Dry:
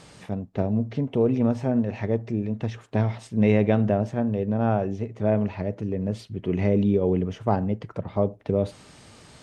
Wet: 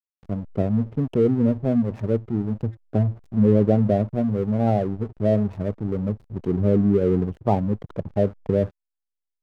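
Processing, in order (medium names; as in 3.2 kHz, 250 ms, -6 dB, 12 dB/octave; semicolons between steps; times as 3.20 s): spectral gate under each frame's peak -15 dB strong; hysteresis with a dead band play -32.5 dBFS; trim +3 dB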